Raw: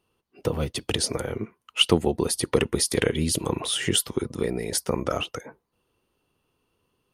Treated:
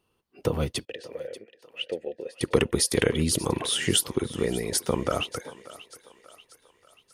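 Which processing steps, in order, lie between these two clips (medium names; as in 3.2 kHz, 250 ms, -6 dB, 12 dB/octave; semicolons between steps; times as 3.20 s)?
0.85–2.41 s: vowel filter e; thinning echo 587 ms, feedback 51%, high-pass 420 Hz, level -16.5 dB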